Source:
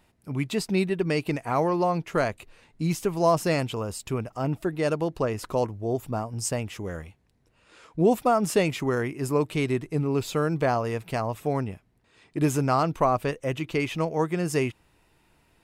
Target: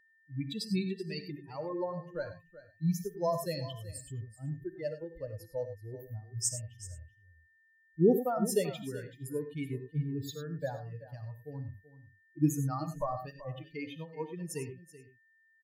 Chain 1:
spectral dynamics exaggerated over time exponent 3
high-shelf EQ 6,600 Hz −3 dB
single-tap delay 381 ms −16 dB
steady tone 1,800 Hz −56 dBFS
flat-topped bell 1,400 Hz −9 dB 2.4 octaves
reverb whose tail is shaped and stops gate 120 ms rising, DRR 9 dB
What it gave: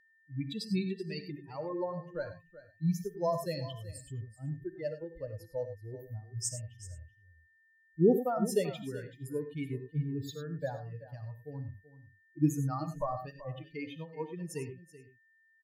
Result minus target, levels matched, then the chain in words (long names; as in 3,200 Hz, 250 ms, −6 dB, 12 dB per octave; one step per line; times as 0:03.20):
8,000 Hz band −3.5 dB
spectral dynamics exaggerated over time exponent 3
high-shelf EQ 6,600 Hz +3.5 dB
single-tap delay 381 ms −16 dB
steady tone 1,800 Hz −56 dBFS
flat-topped bell 1,400 Hz −9 dB 2.4 octaves
reverb whose tail is shaped and stops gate 120 ms rising, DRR 9 dB